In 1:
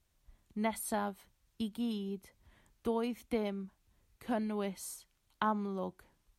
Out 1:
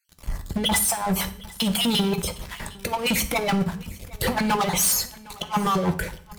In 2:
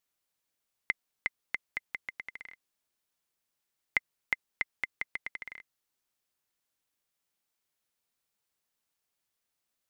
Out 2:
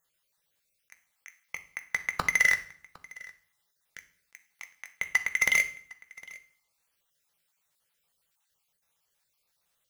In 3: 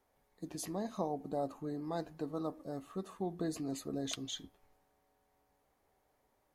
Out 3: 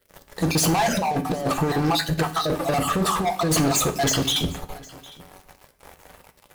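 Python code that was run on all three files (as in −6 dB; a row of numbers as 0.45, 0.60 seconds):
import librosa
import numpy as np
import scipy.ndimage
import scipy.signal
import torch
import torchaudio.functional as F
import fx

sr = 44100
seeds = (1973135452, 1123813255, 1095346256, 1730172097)

y = fx.spec_dropout(x, sr, seeds[0], share_pct=37)
y = fx.peak_eq(y, sr, hz=260.0, db=-11.0, octaves=0.77)
y = fx.over_compress(y, sr, threshold_db=-46.0, ratio=-0.5)
y = fx.leveller(y, sr, passes=5)
y = y + 10.0 ** (-22.5 / 20.0) * np.pad(y, (int(758 * sr / 1000.0), 0))[:len(y)]
y = fx.rev_fdn(y, sr, rt60_s=0.54, lf_ratio=1.45, hf_ratio=0.9, size_ms=35.0, drr_db=7.5)
y = y * 10.0 ** (-12 / 20.0) / np.max(np.abs(y))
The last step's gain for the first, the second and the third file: +11.0, +8.0, +14.5 decibels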